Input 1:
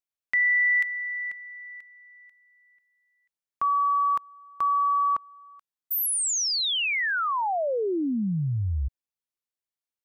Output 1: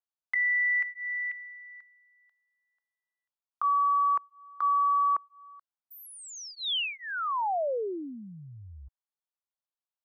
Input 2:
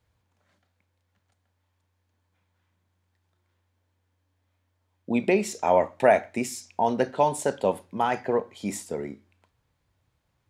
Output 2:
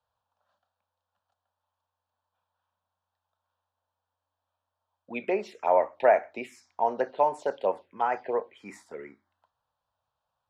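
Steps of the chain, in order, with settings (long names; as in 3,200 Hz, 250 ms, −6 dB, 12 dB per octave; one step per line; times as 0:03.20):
three-way crossover with the lows and the highs turned down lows −19 dB, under 390 Hz, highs −22 dB, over 4,200 Hz
phaser swept by the level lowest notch 360 Hz, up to 3,600 Hz, full sweep at −22 dBFS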